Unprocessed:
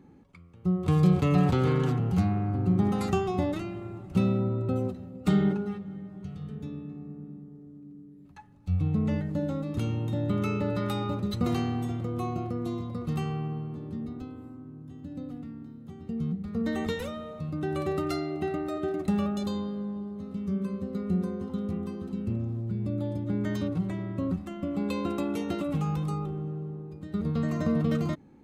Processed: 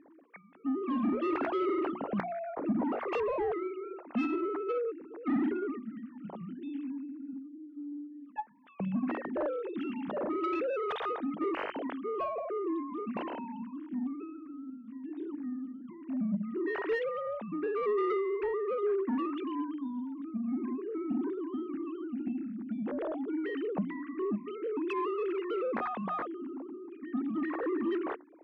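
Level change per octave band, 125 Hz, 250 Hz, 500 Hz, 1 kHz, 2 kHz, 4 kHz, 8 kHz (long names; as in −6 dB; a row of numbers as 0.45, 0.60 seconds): −21.0 dB, −4.5 dB, +0.5 dB, +0.5 dB, +0.5 dB, −8.5 dB, can't be measured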